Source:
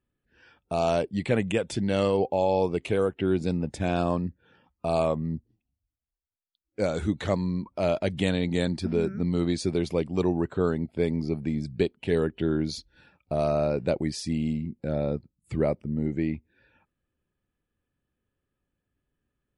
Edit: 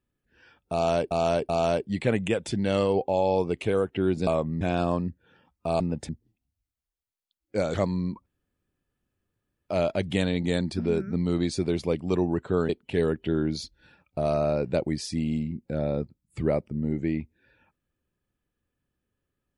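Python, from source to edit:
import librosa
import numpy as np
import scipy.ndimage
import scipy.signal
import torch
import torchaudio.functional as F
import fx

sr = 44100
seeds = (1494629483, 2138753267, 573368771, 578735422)

y = fx.edit(x, sr, fx.repeat(start_s=0.73, length_s=0.38, count=3),
    fx.swap(start_s=3.51, length_s=0.29, other_s=4.99, other_length_s=0.34),
    fx.cut(start_s=6.98, length_s=0.26),
    fx.insert_room_tone(at_s=7.76, length_s=1.43),
    fx.cut(start_s=10.76, length_s=1.07), tone=tone)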